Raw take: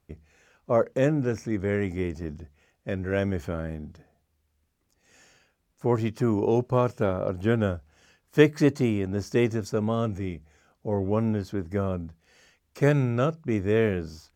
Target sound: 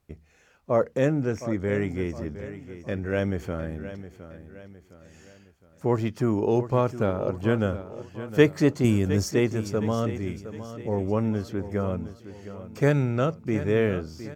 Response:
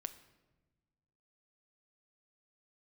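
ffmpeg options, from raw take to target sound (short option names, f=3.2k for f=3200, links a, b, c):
-filter_complex "[0:a]asettb=1/sr,asplit=3[a][b][c];[a]atrim=end=8.844[d];[b]atrim=start=8.84:end=9.31,asetpts=PTS-STARTPTS,afade=t=in:d=0.004:c=qsin,afade=t=out:st=0.466:d=0.004:c=qsin,bass=f=250:g=7,treble=f=4k:g=13[e];[c]atrim=start=9.306[f];[d][e]acrossfade=d=0.004:c1=hsin:c2=qsin[g];[g][f]acrossfade=d=0.004:c1=qsin:c2=hsin,asplit=2[h][i];[i]aecho=0:1:712|1424|2136|2848:0.224|0.0985|0.0433|0.0191[j];[h][j]amix=inputs=2:normalize=0"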